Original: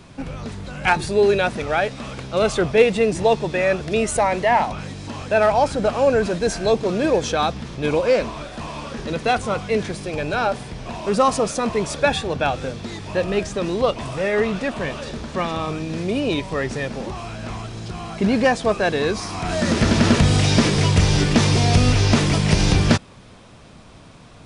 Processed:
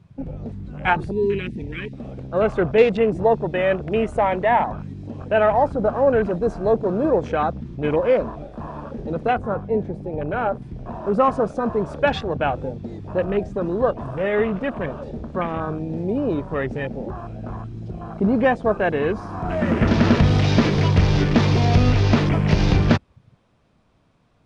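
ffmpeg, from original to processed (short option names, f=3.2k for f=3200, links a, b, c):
-filter_complex "[0:a]asettb=1/sr,asplit=3[a][b][c];[a]atrim=end=1.114[d];[b]atrim=start=1.11:end=1.93,asetpts=PTS-STARTPTS,afade=t=in:d=0.004:c=qsin,afade=t=out:st=0.816:d=0.004:c=qsin,asuperstop=centerf=850:order=8:qfactor=0.57[e];[c]atrim=start=1.926[f];[d][e]acrossfade=d=0.004:c1=hsin:c2=qsin[g];[g][f]acrossfade=d=0.004:c1=qsin:c2=hsin,asettb=1/sr,asplit=3[h][i][j];[h]atrim=end=9.334[k];[i]atrim=start=9.33:end=10.62,asetpts=PTS-STARTPTS,afade=t=in:d=0.004:c=qsin,afade=t=out:st=1.286:d=0.004:c=qsin,highshelf=f=2.2k:g=-8.5[l];[j]atrim=start=10.616[m];[k][l]acrossfade=d=0.004:c1=hsin:c2=qsin[n];[n][m]acrossfade=d=0.004:c1=qsin:c2=hsin,asettb=1/sr,asplit=3[o][p][q];[o]atrim=end=20.154[r];[p]atrim=start=20.15:end=22.29,asetpts=PTS-STARTPTS,afade=t=in:d=0.004:c=qsin,afade=t=out:st=2.136:d=0.004:c=qsin,acrusher=bits=7:mix=0:aa=0.5[s];[q]atrim=start=22.286[t];[r][s]acrossfade=d=0.004:c1=hsin:c2=qsin[u];[u][t]acrossfade=d=0.004:c1=qsin:c2=hsin,afwtdn=0.0398,highshelf=f=3.8k:g=-10"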